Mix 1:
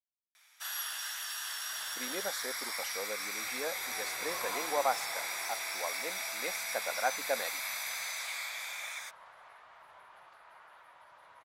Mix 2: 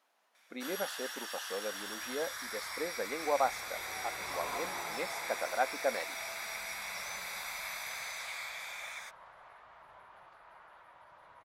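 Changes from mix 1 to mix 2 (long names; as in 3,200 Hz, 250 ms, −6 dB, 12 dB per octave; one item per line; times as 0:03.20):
speech: entry −1.45 s
master: add spectral tilt −2 dB per octave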